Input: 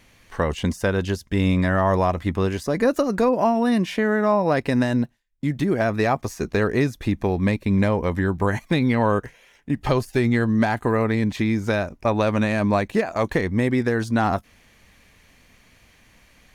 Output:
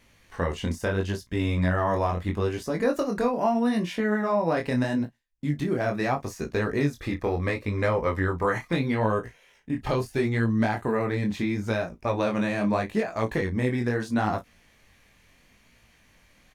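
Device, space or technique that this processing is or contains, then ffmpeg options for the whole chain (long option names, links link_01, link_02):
double-tracked vocal: -filter_complex "[0:a]asettb=1/sr,asplit=3[link_01][link_02][link_03];[link_01]atrim=end=6.994[link_04];[link_02]atrim=start=6.99:end=8.73,asetpts=PTS-STARTPTS,afade=type=in:duration=0.004:curve=qsin,afade=type=out:start_time=1.736:duration=0.004:curve=qsin,equalizer=frequency=200:width_type=o:width=0.33:gain=-7,equalizer=frequency=500:width_type=o:width=0.33:gain=6,equalizer=frequency=1250:width_type=o:width=0.33:gain=10,equalizer=frequency=2000:width_type=o:width=0.33:gain=6,equalizer=frequency=5000:width_type=o:width=0.33:gain=4[link_05];[link_03]atrim=start=8.726[link_06];[link_04][link_05]acrossfade=duration=0.004:curve1=hsin:curve2=qsin[link_07];[link_07][link_06]acrossfade=duration=0.004:curve1=qsin:curve2=hsin,asplit=2[link_08][link_09];[link_09]adelay=34,volume=-13dB[link_10];[link_08][link_10]amix=inputs=2:normalize=0,flanger=delay=17.5:depth=7.3:speed=0.76,volume=-2dB"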